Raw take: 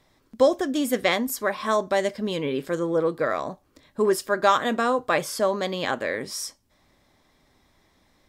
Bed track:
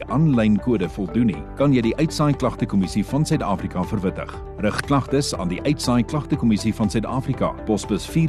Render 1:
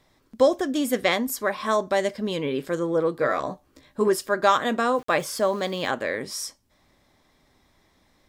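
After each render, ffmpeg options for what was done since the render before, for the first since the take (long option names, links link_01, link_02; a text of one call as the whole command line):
ffmpeg -i in.wav -filter_complex "[0:a]asettb=1/sr,asplit=3[link_01][link_02][link_03];[link_01]atrim=end=3.204[link_04];[link_02]atrim=start=3.2:end=4.08,asetpts=PTS-STARTPTS,afade=type=in:duration=0.004:curve=qsin,afade=type=out:start_time=0.876:duration=0.004:curve=qsin,asplit=2[link_05][link_06];[link_06]adelay=15,volume=-4.5dB[link_07];[link_05][link_07]amix=inputs=2:normalize=0,atrim=end_sample=38808[link_08];[link_03]atrim=start=4.076[link_09];[link_04][link_08]acrossfade=duration=0.004:curve1=hsin:curve2=qsin[link_10];[link_10][link_09]acrossfade=duration=0.004:curve1=qsin:curve2=hsin,asettb=1/sr,asplit=3[link_11][link_12][link_13];[link_11]atrim=end=4.954[link_14];[link_12]atrim=start=4.95:end=5.9,asetpts=PTS-STARTPTS,afade=type=in:duration=0.004:curve=qsin,afade=type=out:start_time=0.946:duration=0.004:curve=qsin,aeval=exprs='val(0)*gte(abs(val(0)),0.00668)':channel_layout=same[link_15];[link_13]atrim=start=5.896[link_16];[link_14][link_15]acrossfade=duration=0.004:curve1=hsin:curve2=qsin[link_17];[link_17][link_16]acrossfade=duration=0.004:curve1=qsin:curve2=hsin" out.wav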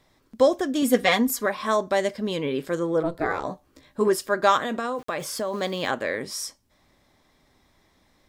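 ffmpeg -i in.wav -filter_complex "[0:a]asettb=1/sr,asplit=3[link_01][link_02][link_03];[link_01]atrim=end=0.824[link_04];[link_02]atrim=start=0.82:end=1.46,asetpts=PTS-STARTPTS,afade=type=in:duration=0.004:curve=qsin,afade=type=out:start_time=0.636:duration=0.004:curve=qsin,aecho=1:1:4.2:0.89,atrim=end_sample=28224[link_05];[link_03]atrim=start=1.456[link_06];[link_04][link_05]acrossfade=duration=0.004:curve1=hsin:curve2=qsin[link_07];[link_07][link_06]acrossfade=duration=0.004:curve1=qsin:curve2=hsin,asplit=3[link_08][link_09][link_10];[link_08]afade=type=out:start_time=3.02:duration=0.02[link_11];[link_09]aeval=exprs='val(0)*sin(2*PI*170*n/s)':channel_layout=same,afade=type=in:start_time=3.02:duration=0.02,afade=type=out:start_time=3.43:duration=0.02[link_12];[link_10]afade=type=in:start_time=3.43:duration=0.02[link_13];[link_11][link_12][link_13]amix=inputs=3:normalize=0,asettb=1/sr,asplit=3[link_14][link_15][link_16];[link_14]atrim=end=4.624[link_17];[link_15]atrim=start=4.62:end=5.54,asetpts=PTS-STARTPTS,afade=type=in:duration=0.004:curve=qsin,afade=type=out:start_time=0.916:duration=0.004:curve=qsin,acompressor=threshold=-23dB:ratio=10:attack=3.2:release=140:knee=1:detection=peak[link_18];[link_16]atrim=start=5.536[link_19];[link_17][link_18]acrossfade=duration=0.004:curve1=hsin:curve2=qsin[link_20];[link_20][link_19]acrossfade=duration=0.004:curve1=qsin:curve2=hsin" out.wav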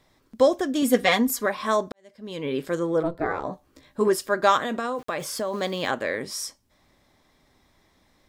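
ffmpeg -i in.wav -filter_complex "[0:a]asplit=3[link_01][link_02][link_03];[link_01]afade=type=out:start_time=3.07:duration=0.02[link_04];[link_02]highshelf=frequency=2900:gain=-10.5,afade=type=in:start_time=3.07:duration=0.02,afade=type=out:start_time=3.52:duration=0.02[link_05];[link_03]afade=type=in:start_time=3.52:duration=0.02[link_06];[link_04][link_05][link_06]amix=inputs=3:normalize=0,asplit=2[link_07][link_08];[link_07]atrim=end=1.92,asetpts=PTS-STARTPTS,afade=type=out:start_time=1.916:duration=0.004:curve=hsin[link_09];[link_08]atrim=start=1.92,asetpts=PTS-STARTPTS,afade=type=in:duration=0.61:curve=qua[link_10];[link_09][link_10]concat=n=2:v=0:a=1" out.wav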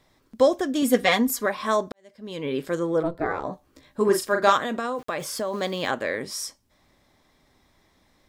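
ffmpeg -i in.wav -filter_complex "[0:a]asettb=1/sr,asplit=3[link_01][link_02][link_03];[link_01]atrim=end=4.054[link_04];[link_02]atrim=start=4.05:end=4.53,asetpts=PTS-STARTPTS,afade=type=in:duration=0.004:curve=qsin,afade=type=out:start_time=0.476:duration=0.004:curve=qsin,asplit=2[link_05][link_06];[link_06]adelay=40,volume=-4.5dB[link_07];[link_05][link_07]amix=inputs=2:normalize=0,atrim=end_sample=21168[link_08];[link_03]atrim=start=4.526[link_09];[link_04][link_08]acrossfade=duration=0.004:curve1=hsin:curve2=qsin[link_10];[link_10][link_09]acrossfade=duration=0.004:curve1=qsin:curve2=hsin" out.wav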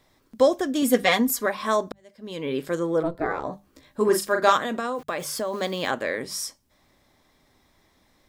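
ffmpeg -i in.wav -af "highshelf=frequency=11000:gain=4.5,bandreject=frequency=50:width_type=h:width=6,bandreject=frequency=100:width_type=h:width=6,bandreject=frequency=150:width_type=h:width=6,bandreject=frequency=200:width_type=h:width=6" out.wav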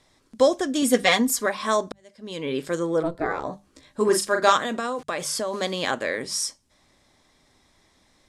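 ffmpeg -i in.wav -af "lowpass=frequency=10000:width=0.5412,lowpass=frequency=10000:width=1.3066,highshelf=frequency=3800:gain=6.5" out.wav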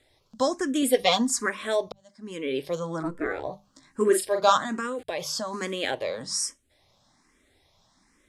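ffmpeg -i in.wav -filter_complex "[0:a]asplit=2[link_01][link_02];[link_02]afreqshift=1.2[link_03];[link_01][link_03]amix=inputs=2:normalize=1" out.wav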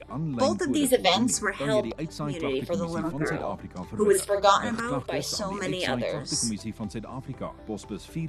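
ffmpeg -i in.wav -i bed.wav -filter_complex "[1:a]volume=-13.5dB[link_01];[0:a][link_01]amix=inputs=2:normalize=0" out.wav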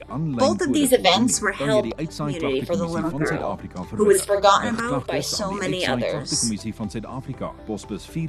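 ffmpeg -i in.wav -af "volume=5dB,alimiter=limit=-2dB:level=0:latency=1" out.wav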